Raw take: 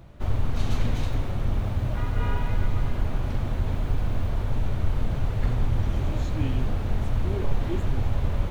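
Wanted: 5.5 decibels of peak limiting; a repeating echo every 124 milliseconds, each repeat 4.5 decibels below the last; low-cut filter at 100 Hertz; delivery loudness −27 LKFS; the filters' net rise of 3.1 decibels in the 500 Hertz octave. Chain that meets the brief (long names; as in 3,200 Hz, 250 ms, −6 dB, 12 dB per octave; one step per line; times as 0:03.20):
high-pass filter 100 Hz
parametric band 500 Hz +4 dB
brickwall limiter −23 dBFS
repeating echo 124 ms, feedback 60%, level −4.5 dB
level +4 dB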